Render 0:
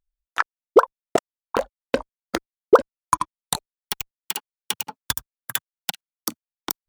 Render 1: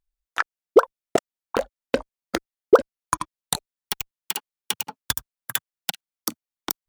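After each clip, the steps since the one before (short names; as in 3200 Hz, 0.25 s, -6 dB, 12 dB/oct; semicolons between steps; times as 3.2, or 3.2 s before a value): dynamic EQ 1000 Hz, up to -6 dB, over -36 dBFS, Q 2.5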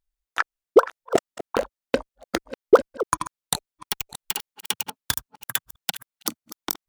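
reverse delay 0.32 s, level -14 dB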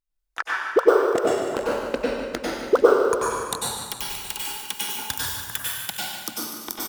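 on a send: feedback echo 0.147 s, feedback 53%, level -11 dB; on the sum: plate-style reverb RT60 1.3 s, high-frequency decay 0.8×, pre-delay 85 ms, DRR -6 dB; gain -5.5 dB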